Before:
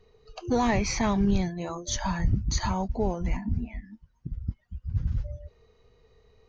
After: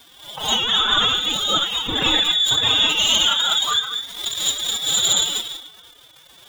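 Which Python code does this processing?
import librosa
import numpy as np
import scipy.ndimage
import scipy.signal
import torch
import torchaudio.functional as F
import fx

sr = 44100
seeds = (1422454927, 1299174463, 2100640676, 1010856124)

y = fx.dead_time(x, sr, dead_ms=0.075)
y = fx.peak_eq(y, sr, hz=150.0, db=13.5, octaves=0.57)
y = fx.tremolo_shape(y, sr, shape='triangle', hz=1.1, depth_pct=65)
y = fx.curve_eq(y, sr, hz=(410.0, 1300.0, 2400.0), db=(0, -10, 11))
y = y + 10.0 ** (-23.0 / 20.0) * np.pad(y, (int(86 * sr / 1000.0), 0))[:len(y)]
y = fx.rev_gated(y, sr, seeds[0], gate_ms=230, shape='rising', drr_db=0.0)
y = fx.freq_invert(y, sr, carrier_hz=3600)
y = fx.over_compress(y, sr, threshold_db=-24.0, ratio=-1.0)
y = fx.dmg_crackle(y, sr, seeds[1], per_s=300.0, level_db=-39.0)
y = fx.pitch_keep_formants(y, sr, semitones=12.0)
y = fx.pre_swell(y, sr, db_per_s=100.0)
y = y * 10.0 ** (7.0 / 20.0)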